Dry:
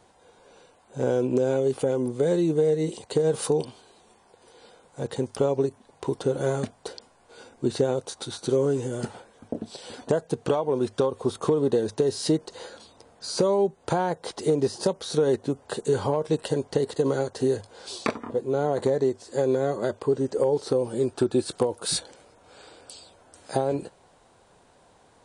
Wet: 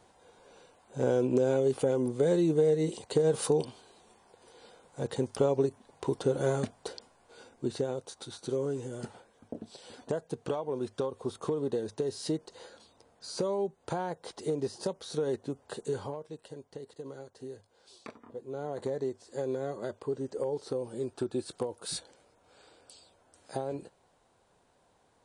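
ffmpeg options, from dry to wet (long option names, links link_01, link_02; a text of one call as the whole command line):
ffmpeg -i in.wav -af "volume=6.5dB,afade=type=out:start_time=6.9:duration=0.97:silence=0.501187,afade=type=out:start_time=15.87:duration=0.42:silence=0.298538,afade=type=in:start_time=18.1:duration=0.85:silence=0.334965" out.wav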